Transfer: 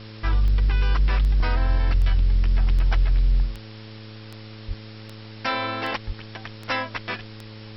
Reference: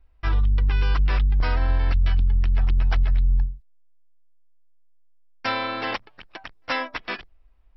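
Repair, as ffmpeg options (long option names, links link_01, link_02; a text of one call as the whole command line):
ffmpeg -i in.wav -filter_complex "[0:a]adeclick=threshold=4,bandreject=frequency=108.5:width_type=h:width=4,bandreject=frequency=217:width_type=h:width=4,bandreject=frequency=325.5:width_type=h:width=4,bandreject=frequency=434:width_type=h:width=4,bandreject=frequency=542.5:width_type=h:width=4,asplit=3[link_01][link_02][link_03];[link_01]afade=type=out:start_time=2.1:duration=0.02[link_04];[link_02]highpass=frequency=140:width=0.5412,highpass=frequency=140:width=1.3066,afade=type=in:start_time=2.1:duration=0.02,afade=type=out:start_time=2.22:duration=0.02[link_05];[link_03]afade=type=in:start_time=2.22:duration=0.02[link_06];[link_04][link_05][link_06]amix=inputs=3:normalize=0,asplit=3[link_07][link_08][link_09];[link_07]afade=type=out:start_time=4.67:duration=0.02[link_10];[link_08]highpass=frequency=140:width=0.5412,highpass=frequency=140:width=1.3066,afade=type=in:start_time=4.67:duration=0.02,afade=type=out:start_time=4.79:duration=0.02[link_11];[link_09]afade=type=in:start_time=4.79:duration=0.02[link_12];[link_10][link_11][link_12]amix=inputs=3:normalize=0,asplit=3[link_13][link_14][link_15];[link_13]afade=type=out:start_time=6.06:duration=0.02[link_16];[link_14]highpass=frequency=140:width=0.5412,highpass=frequency=140:width=1.3066,afade=type=in:start_time=6.06:duration=0.02,afade=type=out:start_time=6.18:duration=0.02[link_17];[link_15]afade=type=in:start_time=6.18:duration=0.02[link_18];[link_16][link_17][link_18]amix=inputs=3:normalize=0,afwtdn=0.0079" out.wav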